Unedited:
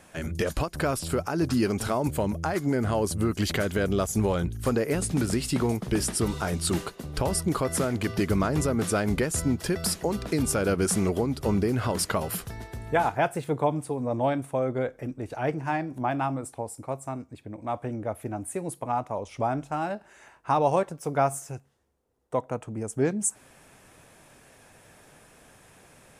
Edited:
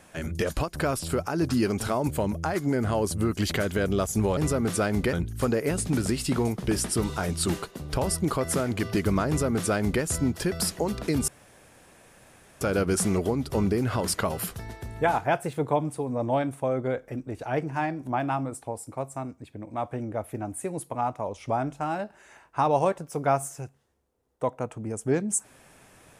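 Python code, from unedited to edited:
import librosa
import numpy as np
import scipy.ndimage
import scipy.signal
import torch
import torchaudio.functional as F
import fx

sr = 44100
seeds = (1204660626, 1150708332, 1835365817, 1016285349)

y = fx.edit(x, sr, fx.duplicate(start_s=8.51, length_s=0.76, to_s=4.37),
    fx.insert_room_tone(at_s=10.52, length_s=1.33), tone=tone)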